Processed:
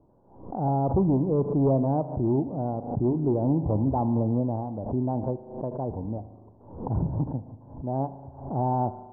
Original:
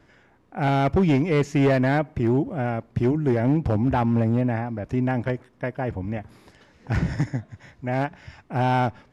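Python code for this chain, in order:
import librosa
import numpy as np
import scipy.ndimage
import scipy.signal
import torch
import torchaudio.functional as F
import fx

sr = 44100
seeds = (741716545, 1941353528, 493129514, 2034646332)

y = scipy.signal.sosfilt(scipy.signal.ellip(4, 1.0, 50, 970.0, 'lowpass', fs=sr, output='sos'), x)
y = fx.rev_spring(y, sr, rt60_s=1.3, pass_ms=(37,), chirp_ms=50, drr_db=12.5)
y = fx.pre_swell(y, sr, db_per_s=91.0)
y = F.gain(torch.from_numpy(y), -3.0).numpy()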